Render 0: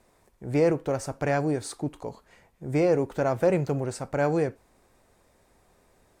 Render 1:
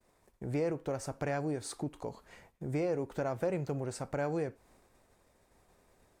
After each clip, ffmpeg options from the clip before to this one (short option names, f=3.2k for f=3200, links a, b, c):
-af "agate=range=-33dB:threshold=-56dB:ratio=3:detection=peak,acompressor=threshold=-41dB:ratio=2,volume=1.5dB"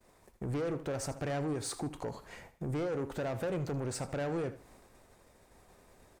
-filter_complex "[0:a]asplit=2[a][b];[b]alimiter=level_in=7.5dB:limit=-24dB:level=0:latency=1,volume=-7.5dB,volume=-0.5dB[c];[a][c]amix=inputs=2:normalize=0,asoftclip=type=tanh:threshold=-30.5dB,aecho=1:1:78|156|234:0.168|0.047|0.0132"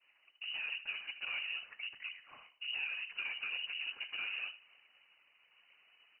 -af "afftfilt=real='hypot(re,im)*cos(2*PI*random(0))':imag='hypot(re,im)*sin(2*PI*random(1))':win_size=512:overlap=0.75,lowpass=f=2.6k:t=q:w=0.5098,lowpass=f=2.6k:t=q:w=0.6013,lowpass=f=2.6k:t=q:w=0.9,lowpass=f=2.6k:t=q:w=2.563,afreqshift=-3000"